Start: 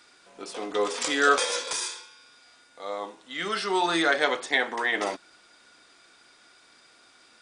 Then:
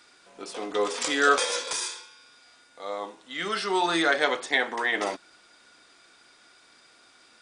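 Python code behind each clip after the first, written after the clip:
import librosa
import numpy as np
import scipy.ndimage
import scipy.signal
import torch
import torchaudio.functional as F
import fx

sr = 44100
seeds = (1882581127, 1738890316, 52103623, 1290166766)

y = x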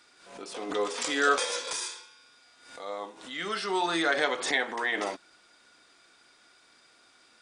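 y = fx.pre_swell(x, sr, db_per_s=80.0)
y = y * librosa.db_to_amplitude(-3.5)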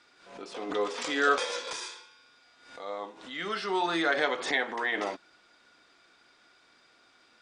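y = fx.air_absorb(x, sr, metres=86.0)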